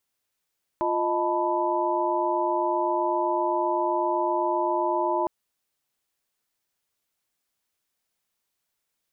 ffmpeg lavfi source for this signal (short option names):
-f lavfi -i "aevalsrc='0.0422*(sin(2*PI*349.23*t)+sin(2*PI*622.25*t)+sin(2*PI*880*t)+sin(2*PI*987.77*t))':d=4.46:s=44100"